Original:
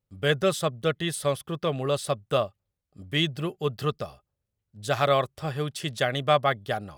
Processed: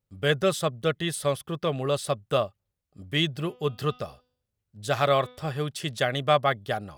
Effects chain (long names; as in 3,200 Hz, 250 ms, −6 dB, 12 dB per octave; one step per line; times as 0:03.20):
0:03.27–0:05.52: hum removal 249.2 Hz, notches 25